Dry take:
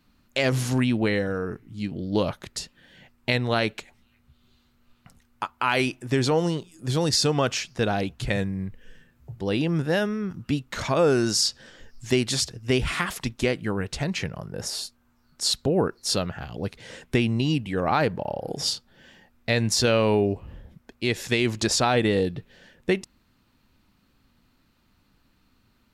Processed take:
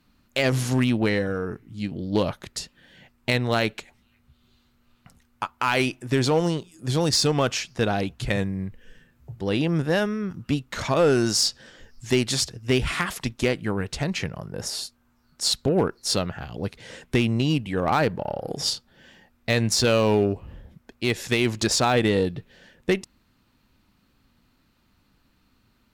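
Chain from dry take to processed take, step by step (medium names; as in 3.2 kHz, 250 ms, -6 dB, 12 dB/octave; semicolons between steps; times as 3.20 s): Chebyshev shaper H 3 -18 dB, 8 -38 dB, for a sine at -7.5 dBFS; hard clipper -17 dBFS, distortion -19 dB; trim +4.5 dB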